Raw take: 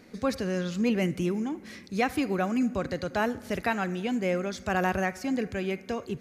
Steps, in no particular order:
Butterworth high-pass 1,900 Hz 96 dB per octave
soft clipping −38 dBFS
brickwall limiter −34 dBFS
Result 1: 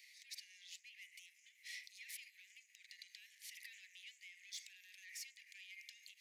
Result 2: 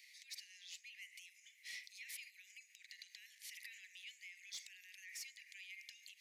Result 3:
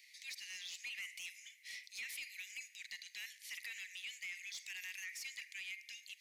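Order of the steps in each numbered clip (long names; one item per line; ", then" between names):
brickwall limiter, then soft clipping, then Butterworth high-pass
brickwall limiter, then Butterworth high-pass, then soft clipping
Butterworth high-pass, then brickwall limiter, then soft clipping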